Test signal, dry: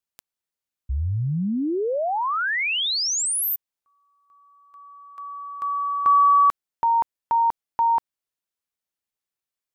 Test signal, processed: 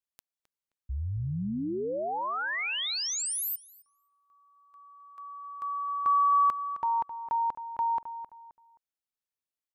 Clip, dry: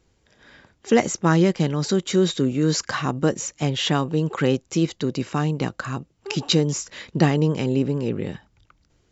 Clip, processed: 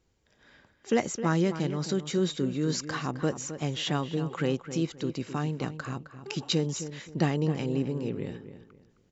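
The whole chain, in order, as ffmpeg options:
-filter_complex "[0:a]asplit=2[a][b];[b]adelay=263,lowpass=f=2.8k:p=1,volume=-11dB,asplit=2[c][d];[d]adelay=263,lowpass=f=2.8k:p=1,volume=0.29,asplit=2[e][f];[f]adelay=263,lowpass=f=2.8k:p=1,volume=0.29[g];[a][c][e][g]amix=inputs=4:normalize=0,volume=-8dB"

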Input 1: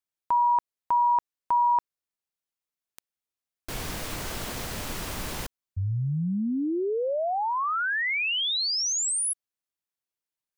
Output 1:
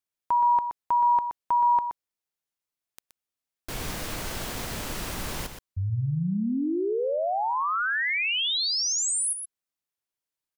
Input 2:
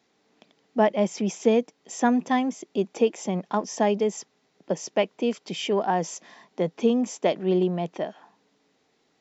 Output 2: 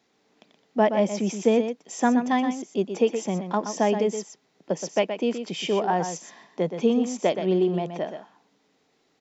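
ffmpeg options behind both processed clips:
-af "aecho=1:1:123:0.376"

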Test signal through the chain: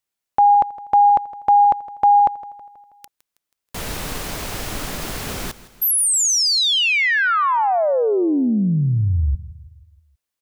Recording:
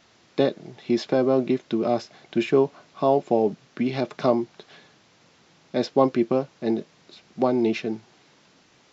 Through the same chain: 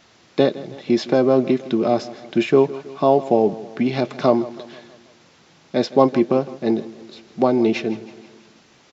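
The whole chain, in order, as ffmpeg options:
-af "aecho=1:1:161|322|483|644|805:0.133|0.0707|0.0375|0.0199|0.0105,volume=4.5dB"

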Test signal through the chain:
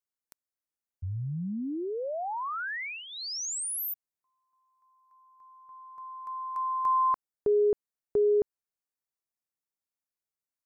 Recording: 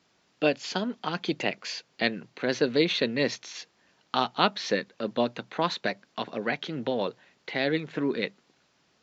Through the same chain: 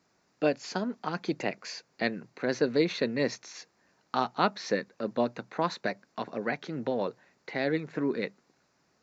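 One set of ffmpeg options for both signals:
-af "equalizer=f=3.2k:w=2.3:g=-12.5,volume=-1.5dB"

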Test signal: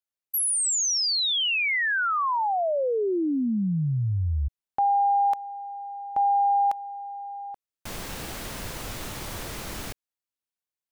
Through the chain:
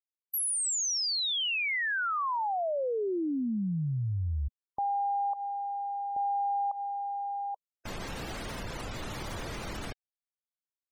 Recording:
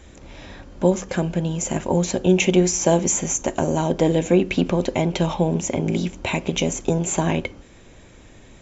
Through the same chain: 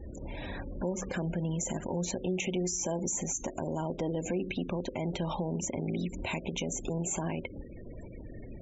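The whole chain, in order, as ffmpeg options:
-af "acompressor=threshold=-34dB:ratio=4:attack=0.53:release=95:knee=6:detection=rms,afftfilt=real='re*gte(hypot(re,im),0.00708)':imag='im*gte(hypot(re,im),0.00708)':win_size=1024:overlap=0.75,volume=3.5dB"

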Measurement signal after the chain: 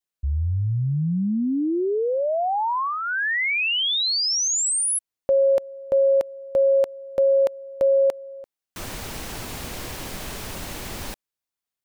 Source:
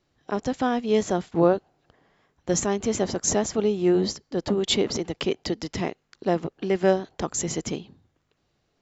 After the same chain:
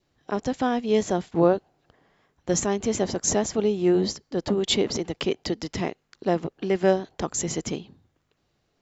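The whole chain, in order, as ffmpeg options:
-af "adynamicequalizer=threshold=0.00501:dfrequency=1300:dqfactor=4.1:tfrequency=1300:tqfactor=4.1:attack=5:release=100:ratio=0.375:range=3:mode=cutabove:tftype=bell"

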